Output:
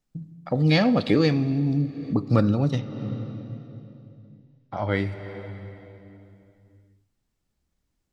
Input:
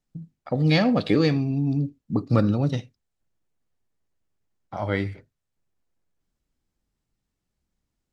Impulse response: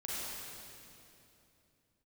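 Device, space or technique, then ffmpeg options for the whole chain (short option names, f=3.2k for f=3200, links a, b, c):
ducked reverb: -filter_complex "[0:a]asplit=3[a][b][c];[1:a]atrim=start_sample=2205[d];[b][d]afir=irnorm=-1:irlink=0[e];[c]apad=whole_len=358238[f];[e][f]sidechaincompress=threshold=-31dB:ratio=6:attack=16:release=366,volume=-7.5dB[g];[a][g]amix=inputs=2:normalize=0,asettb=1/sr,asplit=3[h][i][j];[h]atrim=end=2.784[k];[i]atrim=start=2.78:end=4.91,asetpts=PTS-STARTPTS,afade=t=in:d=0.004:c=qsin,afade=t=out:st=2.126:d=0.004:c=qsin,lowpass=f=5.3k:w=0.5412,lowpass=f=5.3k:w=1.3066[l];[j]atrim=start=4.906[m];[k][l]acrossfade=d=0.004:c1=hsin:c2=qsin[n];[n][m]acrossfade=d=0.004:c1=qsin:c2=hsin"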